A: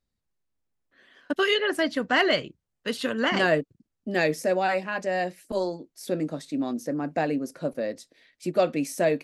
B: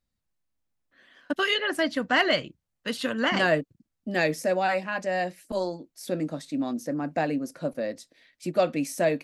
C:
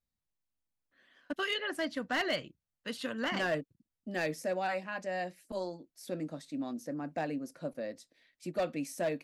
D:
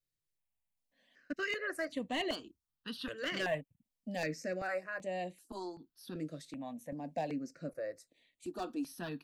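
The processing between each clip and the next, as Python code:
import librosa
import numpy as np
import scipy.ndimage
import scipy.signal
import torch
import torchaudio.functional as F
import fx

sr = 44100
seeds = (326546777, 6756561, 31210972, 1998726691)

y1 = fx.peak_eq(x, sr, hz=410.0, db=-7.5, octaves=0.27)
y2 = np.clip(y1, -10.0 ** (-17.0 / 20.0), 10.0 ** (-17.0 / 20.0))
y2 = F.gain(torch.from_numpy(y2), -8.5).numpy()
y3 = fx.phaser_held(y2, sr, hz=2.6, low_hz=230.0, high_hz=5200.0)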